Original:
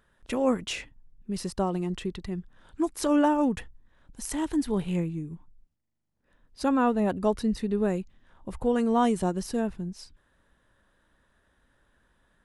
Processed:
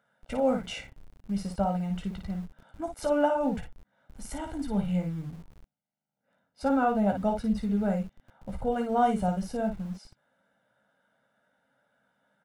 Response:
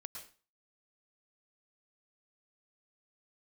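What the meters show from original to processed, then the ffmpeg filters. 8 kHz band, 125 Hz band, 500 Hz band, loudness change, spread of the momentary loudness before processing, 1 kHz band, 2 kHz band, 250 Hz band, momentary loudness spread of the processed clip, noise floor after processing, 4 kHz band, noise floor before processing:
−8.5 dB, +1.0 dB, −1.0 dB, −1.5 dB, 14 LU, +0.5 dB, −1.5 dB, −2.5 dB, 15 LU, −81 dBFS, −5.0 dB, −70 dBFS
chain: -filter_complex "[0:a]highshelf=frequency=2200:gain=-10,aecho=1:1:1.4:0.85,aecho=1:1:15|55:0.473|0.501,acrossover=split=160|3400[link_01][link_02][link_03];[link_01]aeval=exprs='val(0)*gte(abs(val(0)),0.00562)':channel_layout=same[link_04];[link_04][link_02][link_03]amix=inputs=3:normalize=0,volume=-3dB"

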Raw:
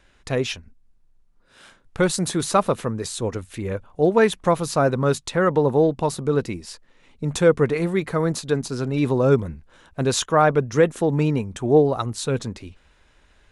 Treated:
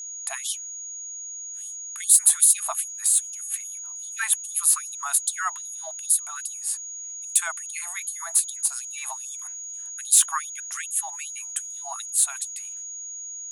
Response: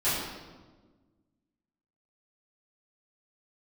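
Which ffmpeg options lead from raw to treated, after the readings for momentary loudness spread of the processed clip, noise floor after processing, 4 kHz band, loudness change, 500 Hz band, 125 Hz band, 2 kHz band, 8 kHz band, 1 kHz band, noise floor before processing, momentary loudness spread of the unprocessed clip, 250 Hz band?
16 LU, −37 dBFS, −3.0 dB, −2.0 dB, −30.5 dB, below −40 dB, −5.0 dB, +14.0 dB, −10.5 dB, −58 dBFS, 12 LU, below −40 dB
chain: -af "agate=range=-33dB:threshold=-45dB:ratio=3:detection=peak,aexciter=amount=8.1:drive=8.8:freq=7900,aeval=exprs='val(0)+0.0282*sin(2*PI*6700*n/s)':channel_layout=same,afftfilt=real='re*gte(b*sr/1024,620*pow(3100/620,0.5+0.5*sin(2*PI*2.5*pts/sr)))':imag='im*gte(b*sr/1024,620*pow(3100/620,0.5+0.5*sin(2*PI*2.5*pts/sr)))':win_size=1024:overlap=0.75,volume=-2.5dB"

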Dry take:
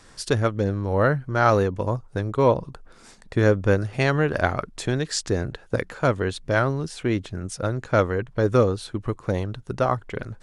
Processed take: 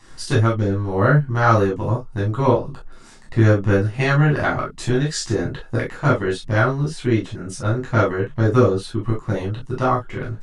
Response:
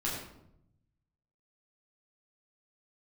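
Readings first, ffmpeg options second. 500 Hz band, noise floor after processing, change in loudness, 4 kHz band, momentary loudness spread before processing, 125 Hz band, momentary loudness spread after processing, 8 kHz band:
+1.5 dB, −42 dBFS, +4.0 dB, +2.0 dB, 9 LU, +6.0 dB, 9 LU, +1.5 dB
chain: -filter_complex "[1:a]atrim=start_sample=2205,atrim=end_sample=3087[link_01];[0:a][link_01]afir=irnorm=-1:irlink=0,volume=-1dB"

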